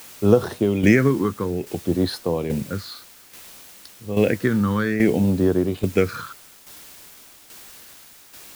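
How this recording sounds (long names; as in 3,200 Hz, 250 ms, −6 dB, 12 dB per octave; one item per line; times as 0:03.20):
phaser sweep stages 6, 0.59 Hz, lowest notch 640–2,200 Hz
a quantiser's noise floor 8 bits, dither triangular
tremolo saw down 1.2 Hz, depth 60%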